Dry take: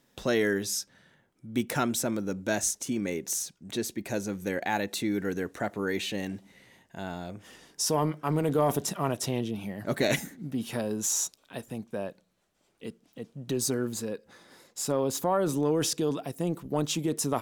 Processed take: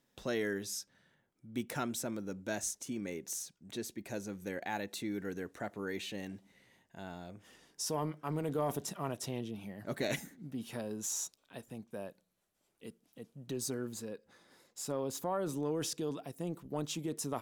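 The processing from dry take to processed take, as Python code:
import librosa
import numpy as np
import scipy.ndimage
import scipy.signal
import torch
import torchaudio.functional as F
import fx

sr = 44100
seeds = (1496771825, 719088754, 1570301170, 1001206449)

y = fx.peak_eq(x, sr, hz=12000.0, db=10.0, octaves=0.77, at=(11.91, 13.47))
y = y * 10.0 ** (-9.0 / 20.0)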